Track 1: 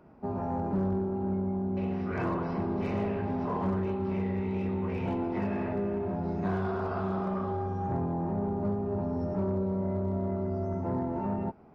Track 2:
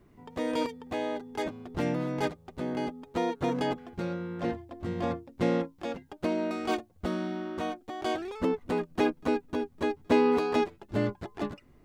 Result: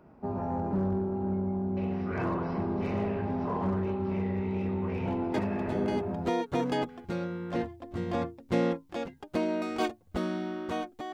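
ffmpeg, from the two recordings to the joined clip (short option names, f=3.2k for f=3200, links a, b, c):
-filter_complex "[0:a]apad=whole_dur=11.13,atrim=end=11.13,atrim=end=6.3,asetpts=PTS-STARTPTS[a];[1:a]atrim=start=2.23:end=8.02,asetpts=PTS-STARTPTS[b];[a][b]acrossfade=d=0.96:c1=log:c2=log"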